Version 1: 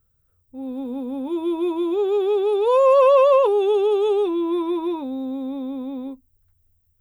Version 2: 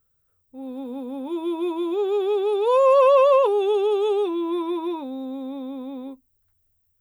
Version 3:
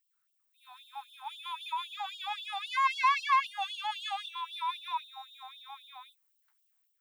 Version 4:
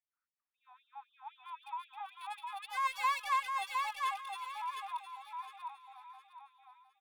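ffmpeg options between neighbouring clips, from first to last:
-af "lowshelf=f=210:g=-10.5"
-filter_complex "[0:a]dynaudnorm=f=310:g=3:m=4.5dB,asplit=2[a][b];[b]highpass=f=720:p=1,volume=14dB,asoftclip=type=tanh:threshold=-3.5dB[c];[a][c]amix=inputs=2:normalize=0,lowpass=f=3.8k:p=1,volume=-6dB,afftfilt=real='re*gte(b*sr/1024,700*pow(2800/700,0.5+0.5*sin(2*PI*3.8*pts/sr)))':imag='im*gte(b*sr/1024,700*pow(2800/700,0.5+0.5*sin(2*PI*3.8*pts/sr)))':win_size=1024:overlap=0.75,volume=-7dB"
-filter_complex "[0:a]acrossover=split=2500[a][b];[b]acrusher=bits=5:mix=0:aa=0.5[c];[a][c]amix=inputs=2:normalize=0,aecho=1:1:710|1420|2130|2840:0.668|0.194|0.0562|0.0163,volume=-6dB"

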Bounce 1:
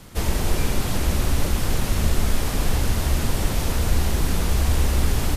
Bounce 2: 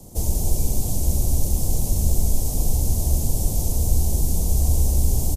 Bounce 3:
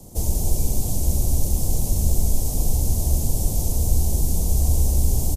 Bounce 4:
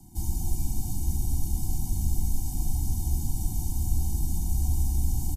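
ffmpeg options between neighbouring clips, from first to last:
-filter_complex "[0:a]highshelf=f=5.5k:g=6.5,acrossover=split=160|2100[a][b][c];[b]alimiter=level_in=6dB:limit=-24dB:level=0:latency=1,volume=-6dB[d];[a][d][c]amix=inputs=3:normalize=0,firequalizer=gain_entry='entry(750,0);entry(1400,-26);entry(6300,-2)':delay=0.05:min_phase=1,volume=1.5dB"
-af anull
-af "afftfilt=real='re*eq(mod(floor(b*sr/1024/350),2),0)':imag='im*eq(mod(floor(b*sr/1024/350),2),0)':win_size=1024:overlap=0.75,volume=-6.5dB"

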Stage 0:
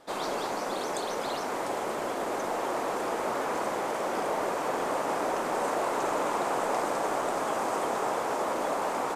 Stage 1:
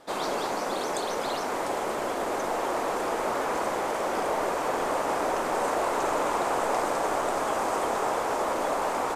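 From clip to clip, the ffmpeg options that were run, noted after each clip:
-af "asubboost=boost=3:cutoff=80,volume=2.5dB"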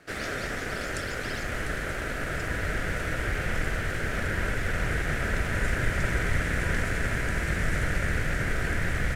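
-af "aeval=exprs='val(0)*sin(2*PI*980*n/s)':c=same,asubboost=boost=5:cutoff=120"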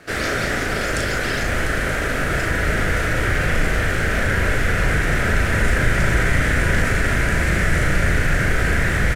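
-filter_complex "[0:a]asplit=2[a][b];[b]adelay=37,volume=-4dB[c];[a][c]amix=inputs=2:normalize=0,asplit=2[d][e];[e]alimiter=limit=-21dB:level=0:latency=1,volume=-2.5dB[f];[d][f]amix=inputs=2:normalize=0,volume=4.5dB"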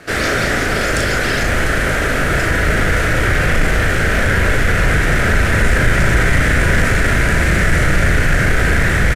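-filter_complex "[0:a]aresample=32000,aresample=44100,asplit=2[a][b];[b]asoftclip=type=hard:threshold=-19.5dB,volume=-6dB[c];[a][c]amix=inputs=2:normalize=0,volume=2.5dB"

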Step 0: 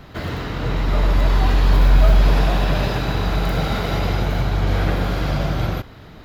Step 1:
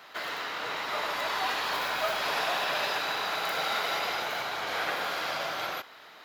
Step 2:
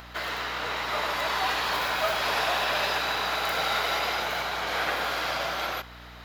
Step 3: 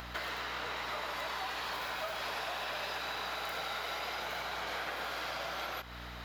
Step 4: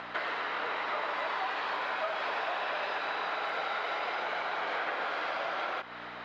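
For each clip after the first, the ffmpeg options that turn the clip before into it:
-af "highpass=840,volume=-1dB"
-af "acompressor=mode=upward:threshold=-49dB:ratio=2.5,aeval=exprs='val(0)+0.00316*(sin(2*PI*60*n/s)+sin(2*PI*2*60*n/s)/2+sin(2*PI*3*60*n/s)/3+sin(2*PI*4*60*n/s)/4+sin(2*PI*5*60*n/s)/5)':c=same,volume=3dB"
-af "acompressor=threshold=-36dB:ratio=6"
-af "highpass=290,lowpass=2.5k,volume=6dB"

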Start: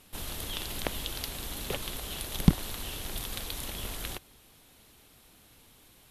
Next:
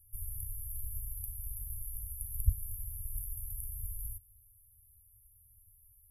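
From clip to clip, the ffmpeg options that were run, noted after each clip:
-af "afftfilt=real='re*(1-between(b*sr/4096,110,10000))':imag='im*(1-between(b*sr/4096,110,10000))':win_size=4096:overlap=0.75"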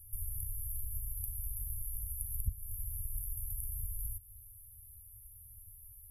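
-af "acompressor=threshold=-47dB:ratio=2.5,volume=8.5dB"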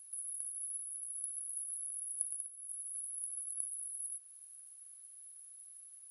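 -af "aexciter=amount=1.3:drive=5.3:freq=5.8k,afftfilt=real='re*between(b*sr/4096,630,11000)':imag='im*between(b*sr/4096,630,11000)':win_size=4096:overlap=0.75,volume=9dB"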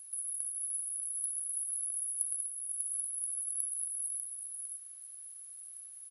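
-af "volume=25.5dB,asoftclip=hard,volume=-25.5dB,aecho=1:1:595:0.562,volume=4.5dB"

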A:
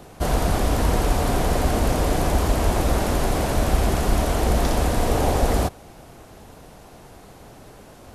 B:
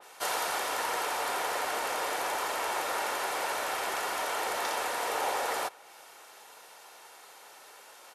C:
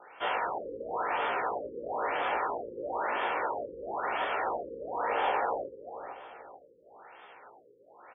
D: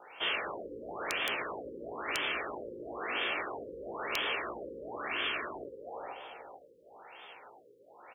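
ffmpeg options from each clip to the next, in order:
-af "highpass=1k,aecho=1:1:2.2:0.32,adynamicequalizer=threshold=0.00355:dfrequency=2900:dqfactor=0.7:tfrequency=2900:tqfactor=0.7:attack=5:release=100:ratio=0.375:range=3:mode=cutabove:tftype=highshelf"
-filter_complex "[0:a]asplit=2[a][b];[b]adelay=17,volume=-3dB[c];[a][c]amix=inputs=2:normalize=0,asplit=2[d][e];[e]adelay=441,lowpass=f=1.1k:p=1,volume=-9dB,asplit=2[f][g];[g]adelay=441,lowpass=f=1.1k:p=1,volume=0.42,asplit=2[h][i];[i]adelay=441,lowpass=f=1.1k:p=1,volume=0.42,asplit=2[j][k];[k]adelay=441,lowpass=f=1.1k:p=1,volume=0.42,asplit=2[l][m];[m]adelay=441,lowpass=f=1.1k:p=1,volume=0.42[n];[d][f][h][j][l][n]amix=inputs=6:normalize=0,afftfilt=real='re*lt(b*sr/1024,530*pow(3600/530,0.5+0.5*sin(2*PI*1*pts/sr)))':imag='im*lt(b*sr/1024,530*pow(3600/530,0.5+0.5*sin(2*PI*1*pts/sr)))':win_size=1024:overlap=0.75"
-af "afftfilt=real='re*lt(hypot(re,im),0.0891)':imag='im*lt(hypot(re,im),0.0891)':win_size=1024:overlap=0.75,aeval=exprs='(mod(15.8*val(0)+1,2)-1)/15.8':c=same,highshelf=f=2.2k:t=q:w=1.5:g=6.5"

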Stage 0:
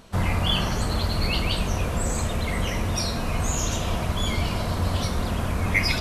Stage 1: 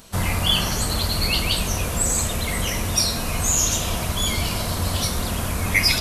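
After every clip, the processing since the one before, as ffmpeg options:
-af "crystalizer=i=3:c=0"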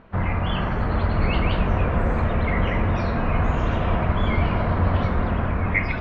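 -af "lowpass=f=2k:w=0.5412,lowpass=f=2k:w=1.3066,dynaudnorm=f=360:g=5:m=4.5dB"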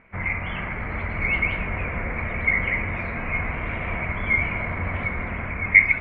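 -af "lowpass=f=2.2k:t=q:w=14,volume=-8.5dB"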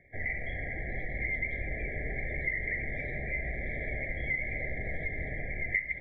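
-af "afreqshift=-89,acompressor=threshold=-25dB:ratio=4,afftfilt=real='re*eq(mod(floor(b*sr/1024/800),2),0)':imag='im*eq(mod(floor(b*sr/1024/800),2),0)':win_size=1024:overlap=0.75,volume=-4.5dB"

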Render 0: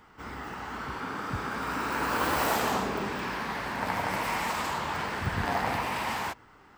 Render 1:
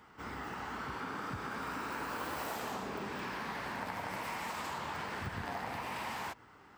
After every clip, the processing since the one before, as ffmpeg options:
-af "highpass=62,acompressor=threshold=-34dB:ratio=6,volume=-2.5dB"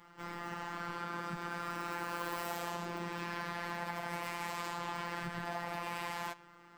-af "flanger=delay=6.7:depth=5.7:regen=-89:speed=0.56:shape=triangular,afftfilt=real='hypot(re,im)*cos(PI*b)':imag='0':win_size=1024:overlap=0.75,volume=8dB"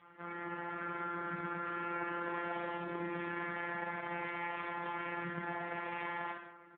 -af "aecho=1:1:50|105|165.5|232|305.3:0.631|0.398|0.251|0.158|0.1" -ar 8000 -c:a libopencore_amrnb -b:a 4750

